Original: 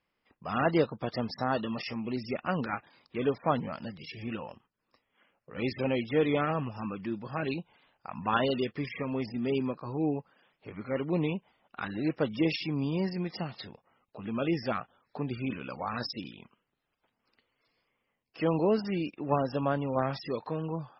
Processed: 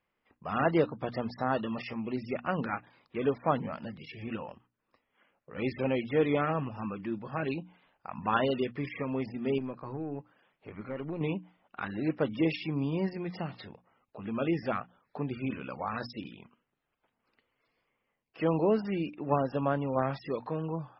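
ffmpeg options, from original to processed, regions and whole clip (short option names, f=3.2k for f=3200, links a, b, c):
-filter_complex "[0:a]asettb=1/sr,asplit=3[a][b][c];[a]atrim=end=9.584[d];[b]atrim=start=9.58:end=11.21,asetpts=PTS-STARTPTS,afade=t=in:d=0.004:c=qsin,afade=t=out:st=1.626:d=0.004:c=qsin,acompressor=threshold=-31dB:ratio=4:attack=3.2:release=140:knee=1:detection=peak,aeval=exprs='(tanh(22.4*val(0)+0.35)-tanh(0.35))/22.4':c=same[e];[c]atrim=start=11.206[f];[d][e]acrossfade=d=0.004:c1=hsin:c2=qsin[g];[g][f]acrossfade=d=0.004:c1=qsin:c2=hsin,lowpass=3k,bandreject=f=60:t=h:w=6,bandreject=f=120:t=h:w=6,bandreject=f=180:t=h:w=6,bandreject=f=240:t=h:w=6,bandreject=f=300:t=h:w=6"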